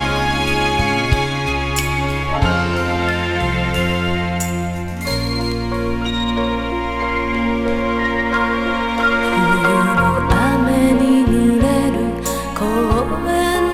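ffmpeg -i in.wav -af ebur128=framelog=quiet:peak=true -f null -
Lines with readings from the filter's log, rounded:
Integrated loudness:
  I:         -17.3 LUFS
  Threshold: -27.3 LUFS
Loudness range:
  LRA:         5.1 LU
  Threshold: -37.3 LUFS
  LRA low:   -19.9 LUFS
  LRA high:  -14.8 LUFS
True peak:
  Peak:       -1.1 dBFS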